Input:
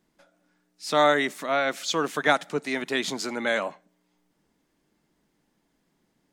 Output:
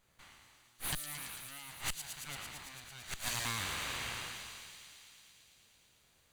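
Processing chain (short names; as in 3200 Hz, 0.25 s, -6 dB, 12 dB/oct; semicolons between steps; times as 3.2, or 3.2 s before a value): spectral trails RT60 2.03 s; full-wave rectifier; high shelf 2300 Hz -8 dB; notch 5300 Hz, Q 6.2; 0.94–3.28 flipped gate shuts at -16 dBFS, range -26 dB; compressor 10:1, threshold -33 dBFS, peak gain reduction 14 dB; passive tone stack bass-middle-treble 5-5-5; thin delay 0.112 s, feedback 83%, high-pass 4400 Hz, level -4.5 dB; gain +15.5 dB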